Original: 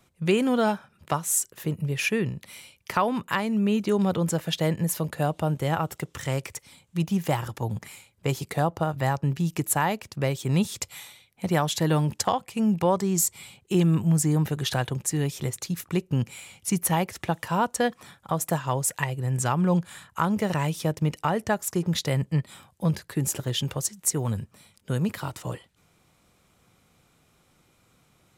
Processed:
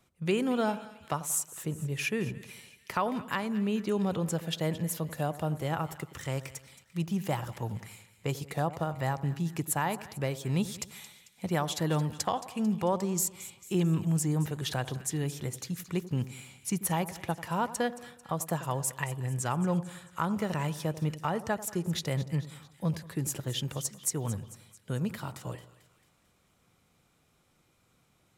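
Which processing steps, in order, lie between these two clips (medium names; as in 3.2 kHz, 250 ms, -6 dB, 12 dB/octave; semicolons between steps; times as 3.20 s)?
two-band feedback delay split 1.4 kHz, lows 91 ms, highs 222 ms, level -15 dB; trim -6 dB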